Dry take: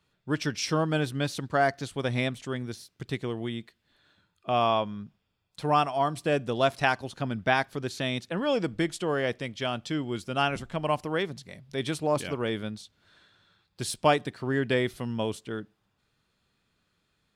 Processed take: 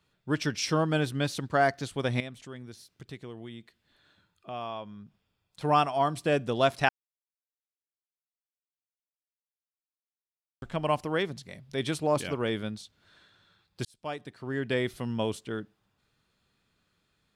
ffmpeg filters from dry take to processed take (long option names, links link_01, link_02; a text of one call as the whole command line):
ffmpeg -i in.wav -filter_complex "[0:a]asettb=1/sr,asplit=3[link_01][link_02][link_03];[link_01]atrim=end=2.204[link_04];[link_02]atrim=start=2.2:end=5.61,asetpts=PTS-STARTPTS,afade=type=in:duration=0.004:curve=qsin,afade=type=out:start_time=3.406:duration=0.004:curve=qsin,acompressor=threshold=-56dB:ratio=1.5:attack=3.2:release=140:knee=1:detection=peak[link_05];[link_03]atrim=start=5.606[link_06];[link_04][link_05]acrossfade=duration=0.004:curve1=hsin:curve2=qsin[link_07];[link_07][link_06]acrossfade=duration=0.004:curve1=qsin:curve2=hsin,asplit=4[link_08][link_09][link_10][link_11];[link_08]atrim=end=6.89,asetpts=PTS-STARTPTS,afade=type=out:start_time=6.886:duration=0.004:curve=hsin[link_12];[link_09]atrim=start=6.89:end=10.62,asetpts=PTS-STARTPTS,volume=0[link_13];[link_10]atrim=start=10.62:end=13.85,asetpts=PTS-STARTPTS,afade=type=in:duration=0.004:curve=hsin,afade=type=out:start_time=3.226:duration=0.004:curve=hsin[link_14];[link_11]atrim=start=13.85,asetpts=PTS-STARTPTS,afade=type=in:duration=1.26[link_15];[link_12][link_13][link_14][link_15]concat=n=4:v=0:a=1" out.wav